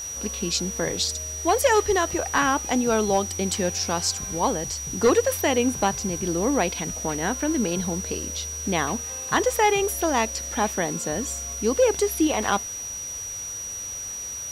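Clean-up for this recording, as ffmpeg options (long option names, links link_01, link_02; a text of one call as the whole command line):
ffmpeg -i in.wav -af "bandreject=frequency=5800:width=30,afwtdn=0.0071" out.wav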